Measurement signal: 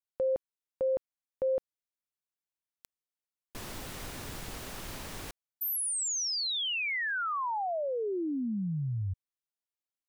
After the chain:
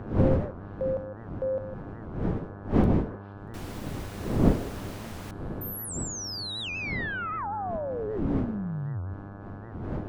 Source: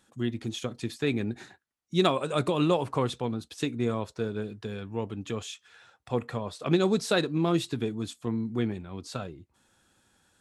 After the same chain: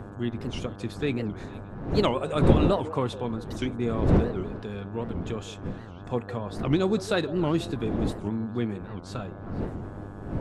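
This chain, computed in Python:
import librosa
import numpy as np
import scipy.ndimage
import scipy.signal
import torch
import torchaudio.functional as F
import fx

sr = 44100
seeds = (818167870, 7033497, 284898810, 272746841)

p1 = fx.dmg_wind(x, sr, seeds[0], corner_hz=280.0, level_db=-31.0)
p2 = fx.high_shelf(p1, sr, hz=3500.0, db=-5.5)
p3 = fx.dmg_buzz(p2, sr, base_hz=100.0, harmonics=17, level_db=-43.0, tilt_db=-5, odd_only=False)
p4 = p3 + fx.echo_stepped(p3, sr, ms=157, hz=500.0, octaves=1.4, feedback_pct=70, wet_db=-11.5, dry=0)
y = fx.record_warp(p4, sr, rpm=78.0, depth_cents=250.0)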